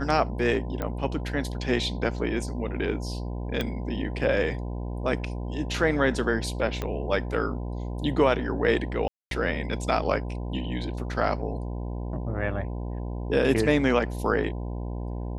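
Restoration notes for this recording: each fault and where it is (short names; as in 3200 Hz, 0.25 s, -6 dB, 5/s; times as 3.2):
buzz 60 Hz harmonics 17 -32 dBFS
0.82 pop -17 dBFS
3.61 pop -14 dBFS
6.82 pop -16 dBFS
9.08–9.31 gap 0.232 s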